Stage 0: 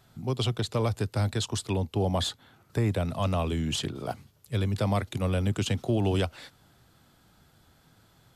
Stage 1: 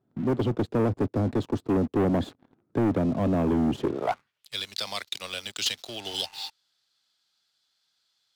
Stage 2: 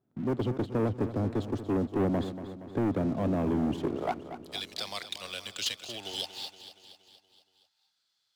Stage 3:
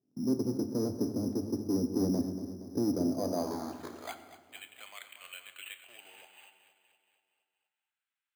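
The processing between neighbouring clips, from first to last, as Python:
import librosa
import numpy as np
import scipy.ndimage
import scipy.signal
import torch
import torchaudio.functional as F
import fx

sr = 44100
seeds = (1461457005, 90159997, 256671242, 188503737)

y1 = fx.filter_sweep_bandpass(x, sr, from_hz=290.0, to_hz=4500.0, start_s=3.79, end_s=4.53, q=2.2)
y1 = fx.spec_repair(y1, sr, seeds[0], start_s=6.08, length_s=0.39, low_hz=760.0, high_hz=2900.0, source='before')
y1 = fx.leveller(y1, sr, passes=3)
y1 = y1 * 10.0 ** (4.5 / 20.0)
y2 = fx.echo_feedback(y1, sr, ms=235, feedback_pct=58, wet_db=-12)
y2 = y2 * 10.0 ** (-4.5 / 20.0)
y3 = fx.filter_sweep_bandpass(y2, sr, from_hz=270.0, to_hz=3000.0, start_s=2.88, end_s=4.21, q=1.3)
y3 = np.repeat(scipy.signal.resample_poly(y3, 1, 8), 8)[:len(y3)]
y3 = fx.rev_fdn(y3, sr, rt60_s=1.3, lf_ratio=1.55, hf_ratio=0.7, size_ms=68.0, drr_db=7.5)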